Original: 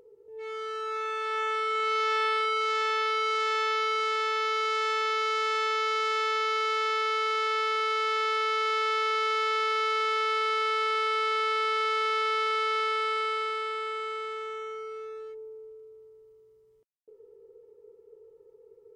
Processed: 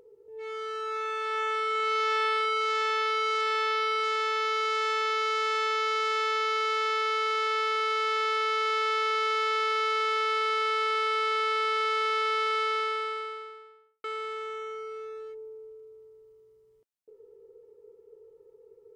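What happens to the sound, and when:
0:03.41–0:04.04: notch filter 6,600 Hz, Q 5.1
0:12.60–0:14.04: fade out and dull

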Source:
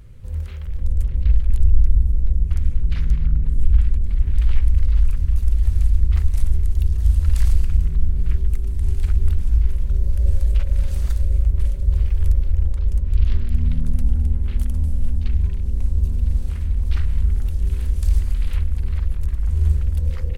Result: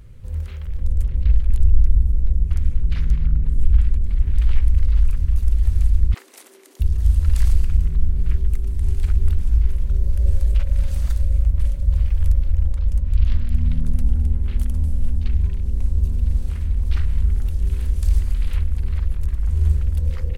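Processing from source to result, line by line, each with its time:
0:06.14–0:06.80: Butterworth high-pass 290 Hz 48 dB per octave
0:10.55–0:13.81: notch filter 400 Hz, Q 6.8

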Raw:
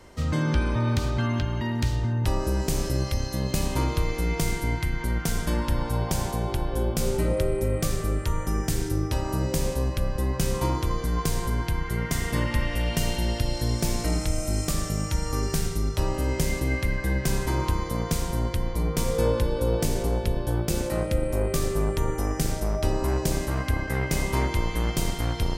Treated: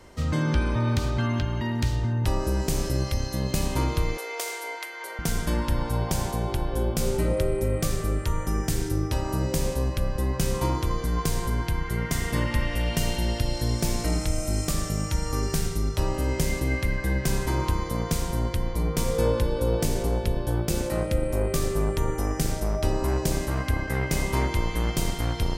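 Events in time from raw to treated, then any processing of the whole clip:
0:04.17–0:05.19: Butterworth high-pass 440 Hz

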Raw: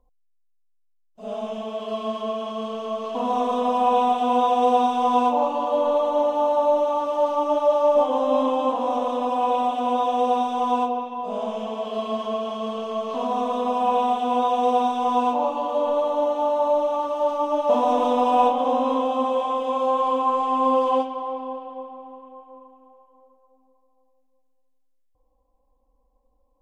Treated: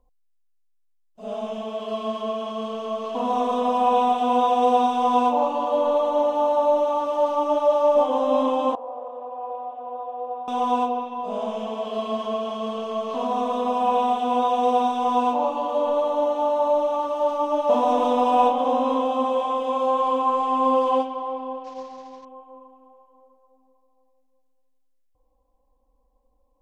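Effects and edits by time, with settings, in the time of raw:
0:08.75–0:10.48: four-pole ladder band-pass 670 Hz, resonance 30%
0:21.64–0:22.25: variable-slope delta modulation 32 kbit/s

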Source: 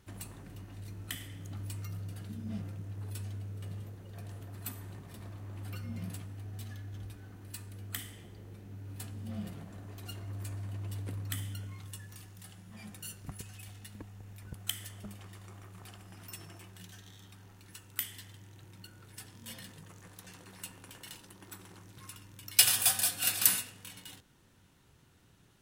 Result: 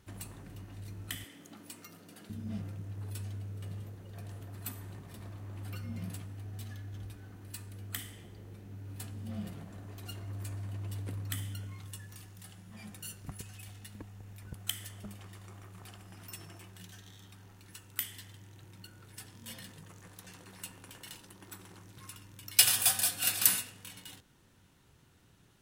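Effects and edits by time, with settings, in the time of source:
0:01.24–0:02.30: Chebyshev high-pass filter 220 Hz, order 3

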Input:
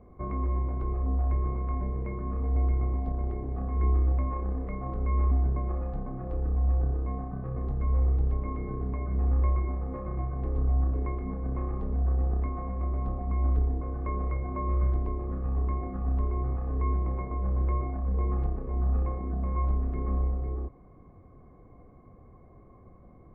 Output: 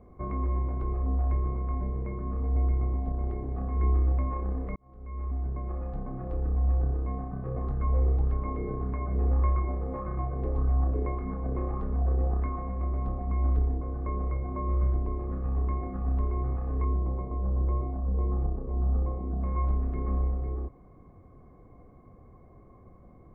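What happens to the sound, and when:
0:01.40–0:03.22: high-frequency loss of the air 310 metres
0:04.76–0:06.14: fade in
0:07.46–0:12.56: auto-filter bell 1.7 Hz 410–1,500 Hz +7 dB
0:13.77–0:15.12: low-pass filter 1,500 Hz 6 dB per octave
0:16.84–0:19.41: low-pass filter 1,000 Hz

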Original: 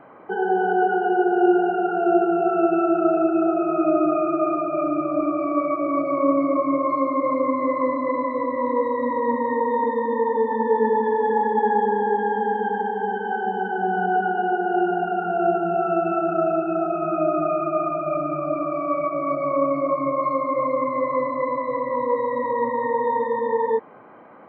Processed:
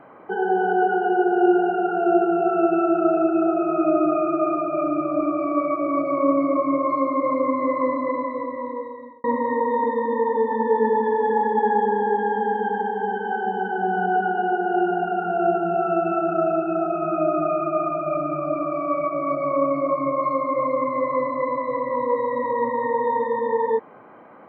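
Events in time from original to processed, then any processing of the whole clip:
0:07.97–0:09.24: fade out

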